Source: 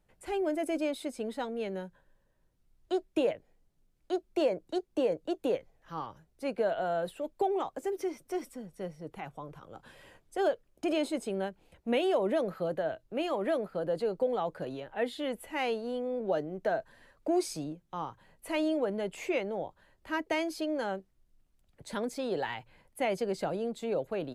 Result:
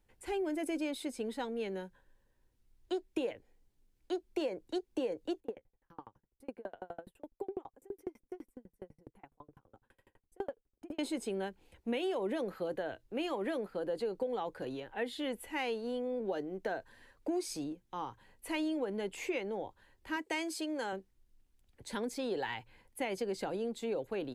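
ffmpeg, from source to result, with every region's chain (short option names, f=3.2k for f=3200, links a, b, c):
-filter_complex "[0:a]asettb=1/sr,asplit=3[a][b][c];[a]atrim=end=5.404[d];[b]atrim=start=5.4:end=10.99,asetpts=PTS-STARTPTS,afade=t=in:d=0.004:c=qsin,afade=t=out:st=5.586:d=0.004:c=qsin,equalizer=f=4.8k:t=o:w=2.3:g=-14.5,aeval=exprs='val(0)*pow(10,-38*if(lt(mod(12*n/s,1),2*abs(12)/1000),1-mod(12*n/s,1)/(2*abs(12)/1000),(mod(12*n/s,1)-2*abs(12)/1000)/(1-2*abs(12)/1000))/20)':c=same[e];[c]atrim=start=10.986[f];[d][e]acrossfade=d=0.004:c1=hsin:c2=qsin[g];[g][f]acrossfade=d=0.004:c1=qsin:c2=hsin,asettb=1/sr,asplit=3[h][i][j];[h]atrim=end=20.164[k];[i]atrim=start=20.16:end=20.93,asetpts=PTS-STARTPTS,afade=t=in:d=0.004:c=qsin,afade=t=out:st=0.766:d=0.004:c=qsin,highpass=f=290:p=1,equalizer=f=8.1k:t=o:w=0.33:g=10[l];[j]atrim=start=20.926[m];[k][l]acrossfade=d=0.004:c1=hsin:c2=qsin[n];[n][m]acrossfade=d=0.004:c1=qsin:c2=hsin,equalizer=f=160:t=o:w=0.33:g=-12,equalizer=f=630:t=o:w=0.33:g=-9,equalizer=f=1.25k:t=o:w=0.33:g=-5,acompressor=threshold=-31dB:ratio=6"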